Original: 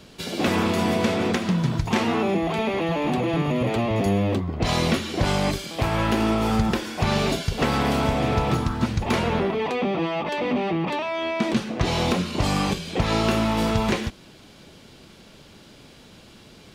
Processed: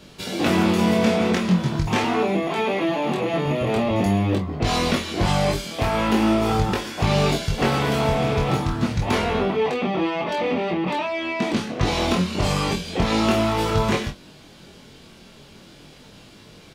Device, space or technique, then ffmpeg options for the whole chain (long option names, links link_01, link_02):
double-tracked vocal: -filter_complex "[0:a]asettb=1/sr,asplit=3[link_01][link_02][link_03];[link_01]atrim=end=2.044[link_04];[link_02]atrim=start=2.04:end=3.46,asetpts=PTS-STARTPTS,afade=type=in:duration=0.004:curve=qsin,afade=type=out:start_time=1.416:duration=0.004:curve=qsin,highpass=150[link_05];[link_03]atrim=start=3.456[link_06];[link_04][link_05]acrossfade=duration=0.004:curve1=hsin:curve2=qsin[link_07];[link_07][link_06]acrossfade=duration=0.004:curve1=qsin:curve2=hsin,asplit=2[link_08][link_09];[link_09]adelay=27,volume=-8dB[link_10];[link_08][link_10]amix=inputs=2:normalize=0,flanger=delay=20:depth=2.6:speed=0.43,volume=4dB"